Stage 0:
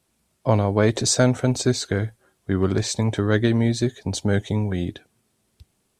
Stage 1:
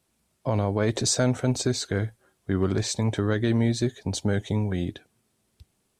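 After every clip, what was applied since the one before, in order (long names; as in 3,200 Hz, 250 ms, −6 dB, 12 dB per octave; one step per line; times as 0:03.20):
brickwall limiter −10 dBFS, peak gain reduction 6 dB
level −2.5 dB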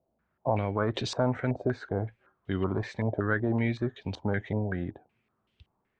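low-pass on a step sequencer 5.3 Hz 650–3,000 Hz
level −5.5 dB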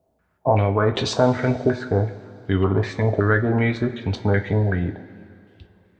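coupled-rooms reverb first 0.23 s, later 2.7 s, from −18 dB, DRR 5.5 dB
level +8 dB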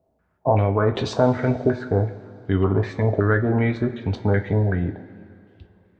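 high-shelf EQ 2,300 Hz −8.5 dB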